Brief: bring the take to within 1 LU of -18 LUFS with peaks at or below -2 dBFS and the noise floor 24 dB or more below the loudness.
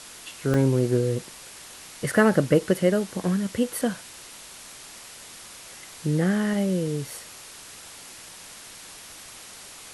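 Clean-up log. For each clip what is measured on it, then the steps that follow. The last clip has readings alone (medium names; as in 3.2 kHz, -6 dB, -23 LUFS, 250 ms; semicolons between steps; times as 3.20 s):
dropouts 2; longest dropout 1.8 ms; noise floor -44 dBFS; noise floor target -48 dBFS; loudness -24.0 LUFS; peak level -6.0 dBFS; loudness target -18.0 LUFS
-> interpolate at 0.54/7.10 s, 1.8 ms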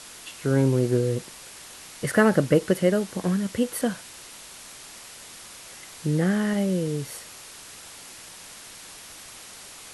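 dropouts 0; noise floor -44 dBFS; noise floor target -48 dBFS
-> noise reduction 6 dB, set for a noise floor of -44 dBFS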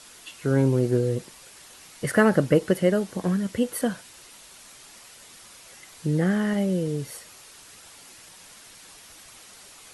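noise floor -49 dBFS; loudness -24.0 LUFS; peak level -6.0 dBFS; loudness target -18.0 LUFS
-> trim +6 dB; peak limiter -2 dBFS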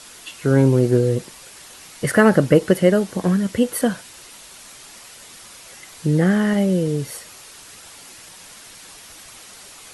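loudness -18.5 LUFS; peak level -2.0 dBFS; noise floor -43 dBFS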